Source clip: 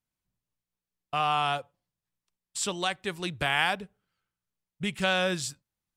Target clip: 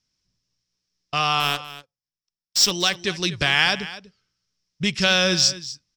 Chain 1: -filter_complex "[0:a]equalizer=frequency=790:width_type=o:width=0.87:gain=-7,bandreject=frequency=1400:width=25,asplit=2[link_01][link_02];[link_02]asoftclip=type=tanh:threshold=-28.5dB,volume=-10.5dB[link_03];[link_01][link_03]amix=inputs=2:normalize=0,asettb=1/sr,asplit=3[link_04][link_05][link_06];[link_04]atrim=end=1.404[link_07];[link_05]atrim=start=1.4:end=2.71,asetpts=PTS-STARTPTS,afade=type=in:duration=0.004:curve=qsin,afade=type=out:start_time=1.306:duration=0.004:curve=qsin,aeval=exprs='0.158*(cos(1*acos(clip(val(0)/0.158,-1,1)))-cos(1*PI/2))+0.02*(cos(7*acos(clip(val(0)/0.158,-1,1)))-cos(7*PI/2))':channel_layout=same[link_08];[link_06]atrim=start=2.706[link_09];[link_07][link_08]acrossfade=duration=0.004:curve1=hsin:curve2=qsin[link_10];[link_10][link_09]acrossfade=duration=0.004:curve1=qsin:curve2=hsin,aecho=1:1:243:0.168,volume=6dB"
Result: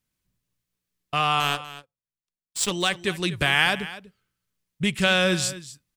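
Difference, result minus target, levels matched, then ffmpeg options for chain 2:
4,000 Hz band −2.5 dB
-filter_complex "[0:a]lowpass=frequency=5400:width_type=q:width=8.3,equalizer=frequency=790:width_type=o:width=0.87:gain=-7,bandreject=frequency=1400:width=25,asplit=2[link_01][link_02];[link_02]asoftclip=type=tanh:threshold=-28.5dB,volume=-10.5dB[link_03];[link_01][link_03]amix=inputs=2:normalize=0,asettb=1/sr,asplit=3[link_04][link_05][link_06];[link_04]atrim=end=1.404[link_07];[link_05]atrim=start=1.4:end=2.71,asetpts=PTS-STARTPTS,afade=type=in:duration=0.004:curve=qsin,afade=type=out:start_time=1.306:duration=0.004:curve=qsin,aeval=exprs='0.158*(cos(1*acos(clip(val(0)/0.158,-1,1)))-cos(1*PI/2))+0.02*(cos(7*acos(clip(val(0)/0.158,-1,1)))-cos(7*PI/2))':channel_layout=same[link_08];[link_06]atrim=start=2.706[link_09];[link_07][link_08]acrossfade=duration=0.004:curve1=hsin:curve2=qsin[link_10];[link_10][link_09]acrossfade=duration=0.004:curve1=qsin:curve2=hsin,aecho=1:1:243:0.168,volume=6dB"

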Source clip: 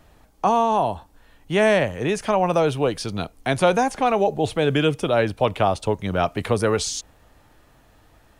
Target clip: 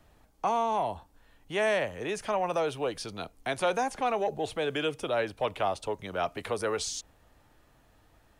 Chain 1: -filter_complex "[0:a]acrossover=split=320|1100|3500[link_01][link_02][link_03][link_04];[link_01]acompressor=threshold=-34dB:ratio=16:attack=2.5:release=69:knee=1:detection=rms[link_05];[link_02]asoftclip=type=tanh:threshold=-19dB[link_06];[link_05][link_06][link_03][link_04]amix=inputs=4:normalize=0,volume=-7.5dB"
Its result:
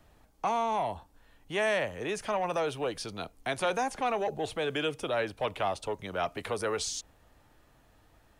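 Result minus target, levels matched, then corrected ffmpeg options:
soft clipping: distortion +8 dB
-filter_complex "[0:a]acrossover=split=320|1100|3500[link_01][link_02][link_03][link_04];[link_01]acompressor=threshold=-34dB:ratio=16:attack=2.5:release=69:knee=1:detection=rms[link_05];[link_02]asoftclip=type=tanh:threshold=-13dB[link_06];[link_05][link_06][link_03][link_04]amix=inputs=4:normalize=0,volume=-7.5dB"

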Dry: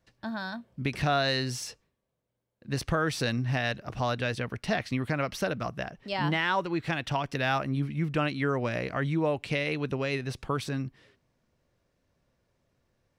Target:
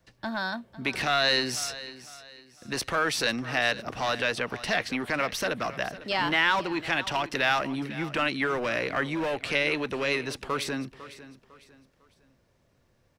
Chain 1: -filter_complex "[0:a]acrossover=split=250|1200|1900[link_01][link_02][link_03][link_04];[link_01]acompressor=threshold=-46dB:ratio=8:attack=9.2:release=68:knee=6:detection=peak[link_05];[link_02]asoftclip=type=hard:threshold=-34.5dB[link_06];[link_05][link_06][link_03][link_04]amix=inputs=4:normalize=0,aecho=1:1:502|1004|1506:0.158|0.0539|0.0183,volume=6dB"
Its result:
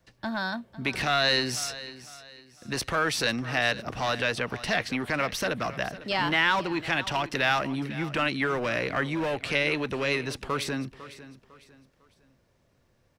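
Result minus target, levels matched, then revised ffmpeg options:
downward compressor: peak gain reduction −5.5 dB
-filter_complex "[0:a]acrossover=split=250|1200|1900[link_01][link_02][link_03][link_04];[link_01]acompressor=threshold=-52.5dB:ratio=8:attack=9.2:release=68:knee=6:detection=peak[link_05];[link_02]asoftclip=type=hard:threshold=-34.5dB[link_06];[link_05][link_06][link_03][link_04]amix=inputs=4:normalize=0,aecho=1:1:502|1004|1506:0.158|0.0539|0.0183,volume=6dB"

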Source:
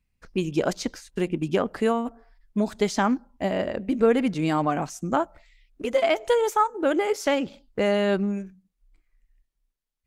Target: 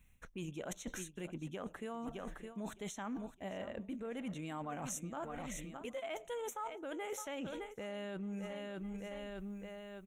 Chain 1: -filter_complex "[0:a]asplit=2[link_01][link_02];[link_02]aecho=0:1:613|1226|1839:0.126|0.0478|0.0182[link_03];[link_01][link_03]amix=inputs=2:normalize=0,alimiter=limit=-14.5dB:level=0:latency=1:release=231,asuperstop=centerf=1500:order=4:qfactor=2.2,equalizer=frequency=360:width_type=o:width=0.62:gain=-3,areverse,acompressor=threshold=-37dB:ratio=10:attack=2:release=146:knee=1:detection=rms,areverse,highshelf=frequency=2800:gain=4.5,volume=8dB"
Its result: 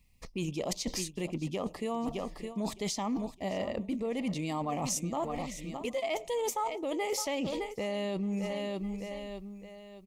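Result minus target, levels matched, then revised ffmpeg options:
downward compressor: peak gain reduction −9.5 dB; 2,000 Hz band −3.5 dB
-filter_complex "[0:a]asplit=2[link_01][link_02];[link_02]aecho=0:1:613|1226|1839:0.126|0.0478|0.0182[link_03];[link_01][link_03]amix=inputs=2:normalize=0,alimiter=limit=-14.5dB:level=0:latency=1:release=231,asuperstop=centerf=4800:order=4:qfactor=2.2,equalizer=frequency=360:width_type=o:width=0.62:gain=-3,areverse,acompressor=threshold=-47dB:ratio=10:attack=2:release=146:knee=1:detection=rms,areverse,highshelf=frequency=2800:gain=4.5,volume=8dB"

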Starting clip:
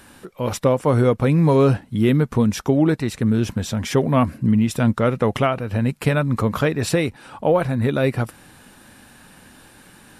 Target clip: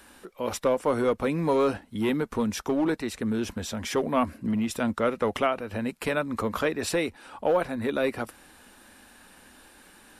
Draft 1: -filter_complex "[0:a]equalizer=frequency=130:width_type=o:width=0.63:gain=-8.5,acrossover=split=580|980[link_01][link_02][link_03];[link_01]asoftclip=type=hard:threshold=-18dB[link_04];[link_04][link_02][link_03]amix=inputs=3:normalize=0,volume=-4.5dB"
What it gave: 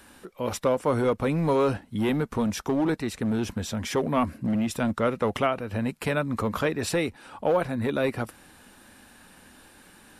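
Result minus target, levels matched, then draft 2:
125 Hz band +5.0 dB
-filter_complex "[0:a]equalizer=frequency=130:width_type=o:width=0.63:gain=-20,acrossover=split=580|980[link_01][link_02][link_03];[link_01]asoftclip=type=hard:threshold=-18dB[link_04];[link_04][link_02][link_03]amix=inputs=3:normalize=0,volume=-4.5dB"

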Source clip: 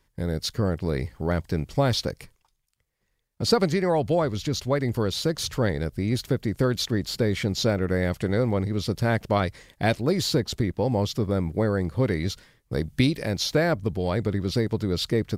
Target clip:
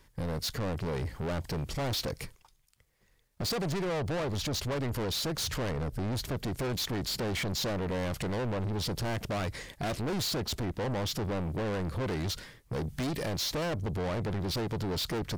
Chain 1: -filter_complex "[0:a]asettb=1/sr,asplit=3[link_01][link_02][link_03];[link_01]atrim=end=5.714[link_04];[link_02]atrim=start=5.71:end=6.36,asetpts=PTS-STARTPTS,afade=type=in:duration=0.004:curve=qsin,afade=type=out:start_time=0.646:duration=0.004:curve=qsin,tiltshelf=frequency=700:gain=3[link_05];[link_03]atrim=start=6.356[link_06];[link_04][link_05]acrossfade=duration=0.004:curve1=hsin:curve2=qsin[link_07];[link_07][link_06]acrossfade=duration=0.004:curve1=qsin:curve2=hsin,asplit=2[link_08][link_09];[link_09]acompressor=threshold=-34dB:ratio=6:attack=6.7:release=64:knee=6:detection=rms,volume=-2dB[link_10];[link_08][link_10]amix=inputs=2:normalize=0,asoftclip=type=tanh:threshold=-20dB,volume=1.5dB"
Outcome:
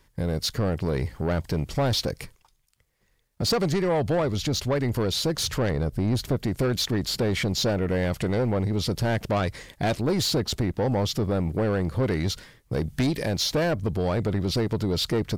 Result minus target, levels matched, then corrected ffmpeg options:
soft clipping: distortion −7 dB
-filter_complex "[0:a]asettb=1/sr,asplit=3[link_01][link_02][link_03];[link_01]atrim=end=5.714[link_04];[link_02]atrim=start=5.71:end=6.36,asetpts=PTS-STARTPTS,afade=type=in:duration=0.004:curve=qsin,afade=type=out:start_time=0.646:duration=0.004:curve=qsin,tiltshelf=frequency=700:gain=3[link_05];[link_03]atrim=start=6.356[link_06];[link_04][link_05]acrossfade=duration=0.004:curve1=hsin:curve2=qsin[link_07];[link_07][link_06]acrossfade=duration=0.004:curve1=qsin:curve2=hsin,asplit=2[link_08][link_09];[link_09]acompressor=threshold=-34dB:ratio=6:attack=6.7:release=64:knee=6:detection=rms,volume=-2dB[link_10];[link_08][link_10]amix=inputs=2:normalize=0,asoftclip=type=tanh:threshold=-31.5dB,volume=1.5dB"

